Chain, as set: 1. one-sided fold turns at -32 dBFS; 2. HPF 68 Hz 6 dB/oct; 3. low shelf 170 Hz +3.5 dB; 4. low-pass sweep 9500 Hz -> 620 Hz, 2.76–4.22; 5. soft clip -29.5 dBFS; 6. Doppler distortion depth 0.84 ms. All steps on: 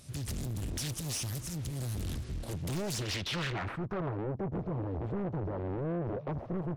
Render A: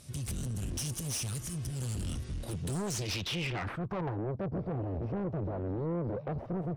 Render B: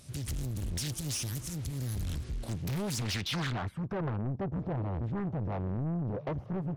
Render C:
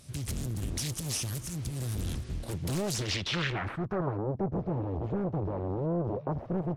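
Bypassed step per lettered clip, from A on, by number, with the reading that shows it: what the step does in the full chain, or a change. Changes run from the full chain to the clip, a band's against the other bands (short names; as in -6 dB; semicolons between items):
6, 8 kHz band +2.0 dB; 1, distortion -1 dB; 5, distortion -14 dB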